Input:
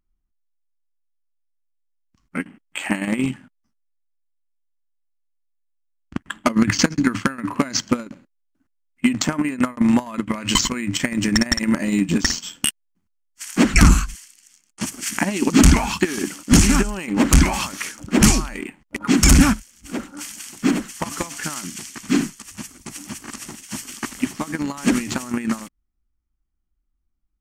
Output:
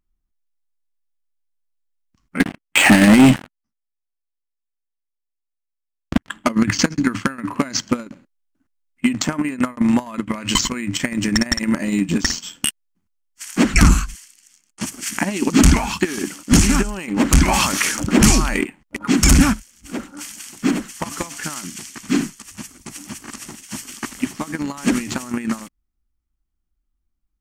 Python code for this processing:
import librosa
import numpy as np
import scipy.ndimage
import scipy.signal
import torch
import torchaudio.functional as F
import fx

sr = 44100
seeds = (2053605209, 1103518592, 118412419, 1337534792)

y = fx.leveller(x, sr, passes=5, at=(2.4, 6.29))
y = fx.env_flatten(y, sr, amount_pct=50, at=(17.48, 18.65))